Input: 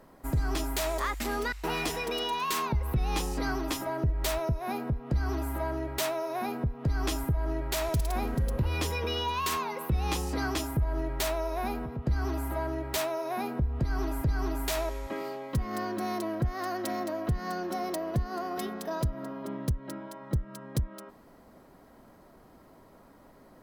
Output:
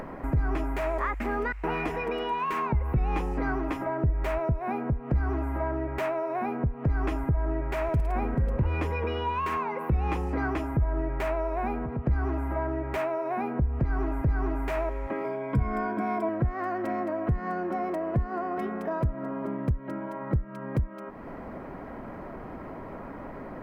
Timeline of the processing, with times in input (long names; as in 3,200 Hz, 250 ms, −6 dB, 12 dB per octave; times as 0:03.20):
0:15.24–0:16.29: EQ curve with evenly spaced ripples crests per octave 1.7, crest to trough 13 dB
whole clip: drawn EQ curve 2,400 Hz 0 dB, 3,700 Hz −16 dB, 10,000 Hz −23 dB; upward compression, threshold −29 dBFS; dynamic equaliser 3,900 Hz, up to −5 dB, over −54 dBFS, Q 0.93; level +2.5 dB